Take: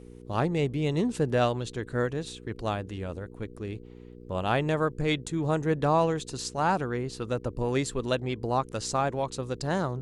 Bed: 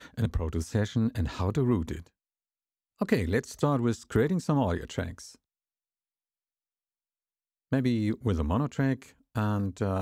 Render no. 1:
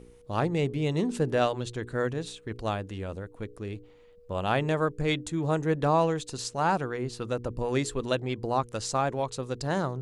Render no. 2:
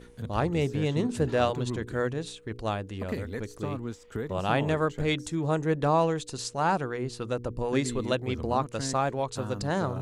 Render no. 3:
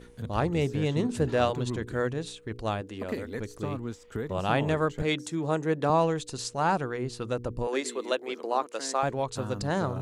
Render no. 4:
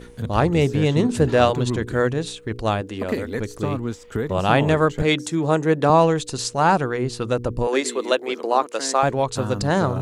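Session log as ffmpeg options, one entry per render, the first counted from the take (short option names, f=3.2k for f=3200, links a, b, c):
-af "bandreject=f=60:t=h:w=4,bandreject=f=120:t=h:w=4,bandreject=f=180:t=h:w=4,bandreject=f=240:t=h:w=4,bandreject=f=300:t=h:w=4,bandreject=f=360:t=h:w=4,bandreject=f=420:t=h:w=4"
-filter_complex "[1:a]volume=-9dB[a];[0:a][a]amix=inputs=2:normalize=0"
-filter_complex "[0:a]asettb=1/sr,asplit=3[a][b][c];[a]atrim=end=2.814[d];[b]atrim=start=2.81:end=3.35,asetpts=PTS-STARTPTS,afade=t=in:d=0.004:c=qsin,afade=t=out:st=0.536:d=0.004:c=qsin,lowshelf=f=200:t=q:w=1.5:g=-6.5[e];[c]atrim=start=3.346[f];[d][e]acrossfade=d=0.004:c1=hsin:c2=qsin[g];[g][f]acrossfade=d=0.004:c1=qsin:c2=hsin,asettb=1/sr,asplit=3[h][i][j];[h]atrim=end=5.024[k];[i]atrim=start=5.02:end=5.9,asetpts=PTS-STARTPTS,afade=t=in:d=0.004:c=qsin,afade=t=out:st=0.876:d=0.004:c=qsin,highpass=160[l];[j]atrim=start=5.896[m];[k][l]acrossfade=d=0.004:c1=hsin:c2=qsin[n];[n][m]acrossfade=d=0.004:c1=qsin:c2=hsin,asettb=1/sr,asplit=3[o][p][q];[o]atrim=end=7.674[r];[p]atrim=start=7.67:end=9.03,asetpts=PTS-STARTPTS,afade=t=in:d=0.004:c=qsin,afade=t=out:st=1.356:d=0.004:c=qsin,highpass=f=330:w=0.5412,highpass=f=330:w=1.3066[s];[q]atrim=start=9.026[t];[r][s]acrossfade=d=0.004:c1=hsin:c2=qsin[u];[u][t]acrossfade=d=0.004:c1=qsin:c2=hsin"
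-af "volume=8.5dB"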